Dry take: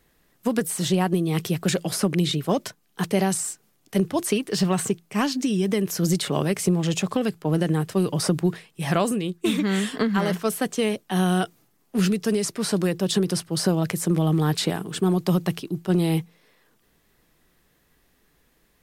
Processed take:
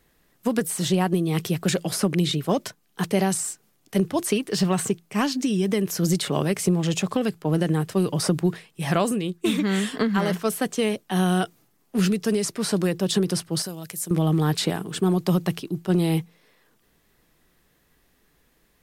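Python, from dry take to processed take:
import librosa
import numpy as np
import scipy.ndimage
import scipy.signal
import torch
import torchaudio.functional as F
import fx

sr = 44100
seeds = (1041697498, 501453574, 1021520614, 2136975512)

y = fx.pre_emphasis(x, sr, coefficient=0.8, at=(13.62, 14.11))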